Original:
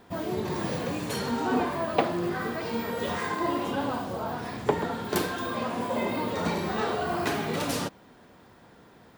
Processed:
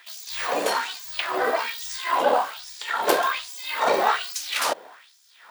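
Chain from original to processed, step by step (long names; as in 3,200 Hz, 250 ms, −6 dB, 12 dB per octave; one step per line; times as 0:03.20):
time stretch by overlap-add 0.6×, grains 29 ms
auto-filter high-pass sine 1.2 Hz 520–6,100 Hz
level +8.5 dB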